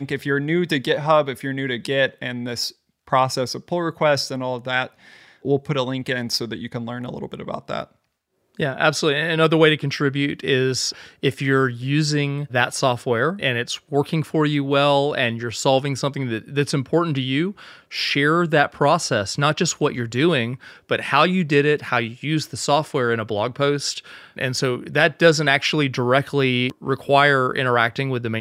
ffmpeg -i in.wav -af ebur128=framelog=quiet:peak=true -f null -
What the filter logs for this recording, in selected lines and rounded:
Integrated loudness:
  I:         -20.6 LUFS
  Threshold: -30.8 LUFS
Loudness range:
  LRA:         4.3 LU
  Threshold: -41.0 LUFS
  LRA low:   -23.7 LUFS
  LRA high:  -19.4 LUFS
True peak:
  Peak:       -1.6 dBFS